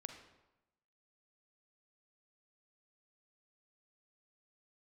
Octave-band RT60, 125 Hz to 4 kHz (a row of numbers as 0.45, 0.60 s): 1.0, 1.0, 0.95, 0.95, 0.85, 0.70 s